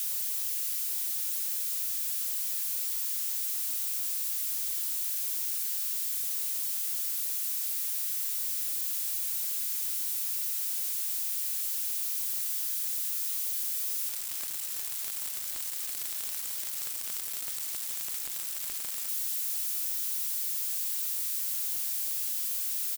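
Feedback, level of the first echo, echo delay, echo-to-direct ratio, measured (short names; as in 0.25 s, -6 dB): 22%, -20.5 dB, 0.951 s, -20.5 dB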